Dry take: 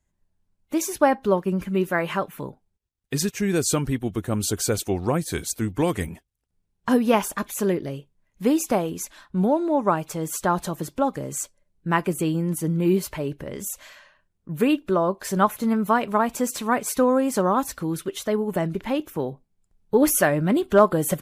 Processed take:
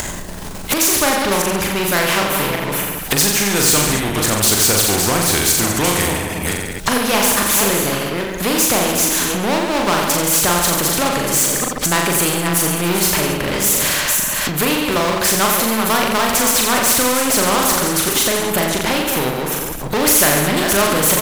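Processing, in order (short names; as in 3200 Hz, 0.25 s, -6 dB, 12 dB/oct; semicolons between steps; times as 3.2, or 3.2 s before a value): reverse delay 0.284 s, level -11.5 dB; power-law curve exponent 0.7; on a send: reverse bouncing-ball echo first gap 40 ms, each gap 1.15×, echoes 5; on the sum: upward compressor, threshold -17 dBFS; spectral compressor 2:1; gain -1 dB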